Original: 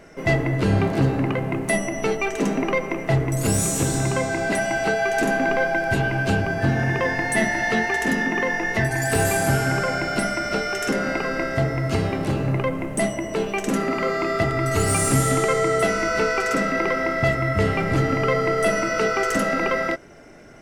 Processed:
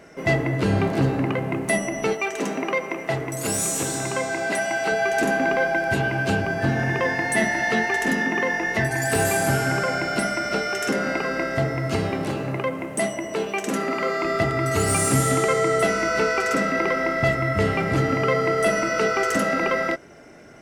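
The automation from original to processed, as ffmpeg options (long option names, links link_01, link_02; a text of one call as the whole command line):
ffmpeg -i in.wav -af "asetnsamples=nb_out_samples=441:pad=0,asendcmd='2.13 highpass f 410;4.92 highpass f 120;12.28 highpass f 280;14.25 highpass f 81',highpass=frequency=99:poles=1" out.wav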